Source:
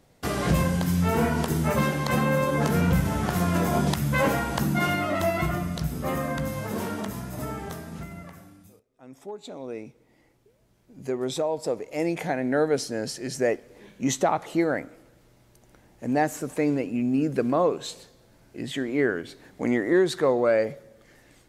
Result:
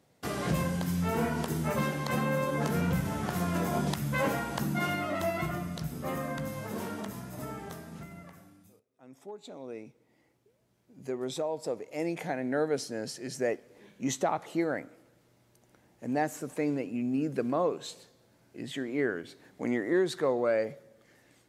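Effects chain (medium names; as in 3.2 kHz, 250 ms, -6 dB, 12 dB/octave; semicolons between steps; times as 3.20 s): high-pass 93 Hz; trim -6 dB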